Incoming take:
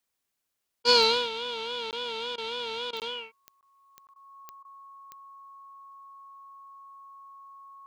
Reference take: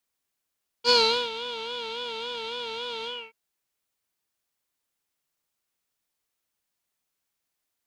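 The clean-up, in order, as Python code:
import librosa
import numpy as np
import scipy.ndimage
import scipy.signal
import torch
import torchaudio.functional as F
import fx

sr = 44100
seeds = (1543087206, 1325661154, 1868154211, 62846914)

y = fx.fix_declick_ar(x, sr, threshold=10.0)
y = fx.notch(y, sr, hz=1100.0, q=30.0)
y = fx.fix_interpolate(y, sr, at_s=(1.91, 3.0, 3.61, 4.07), length_ms=18.0)
y = fx.fix_interpolate(y, sr, at_s=(0.83, 2.36, 2.91, 4.14, 4.63), length_ms=18.0)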